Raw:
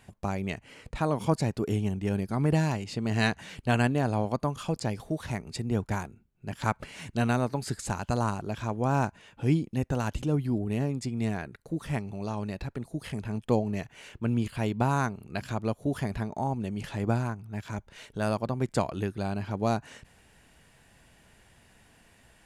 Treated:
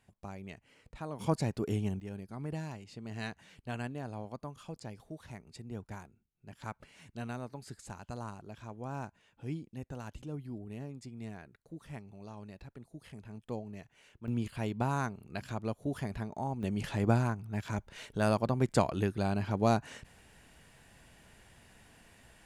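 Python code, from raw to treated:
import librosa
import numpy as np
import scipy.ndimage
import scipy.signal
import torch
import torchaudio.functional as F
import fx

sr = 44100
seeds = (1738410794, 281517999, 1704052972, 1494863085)

y = fx.gain(x, sr, db=fx.steps((0.0, -13.5), (1.19, -4.5), (2.0, -14.0), (14.28, -6.0), (16.63, 0.0)))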